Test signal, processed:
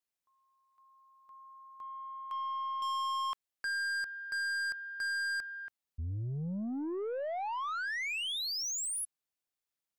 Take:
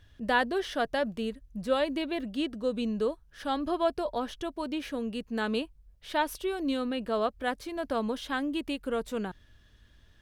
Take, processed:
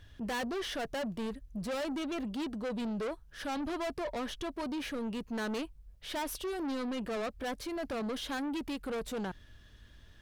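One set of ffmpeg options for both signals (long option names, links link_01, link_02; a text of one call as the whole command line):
ffmpeg -i in.wav -af "aeval=exprs='(tanh(63.1*val(0)+0.05)-tanh(0.05))/63.1':channel_layout=same,volume=3dB" out.wav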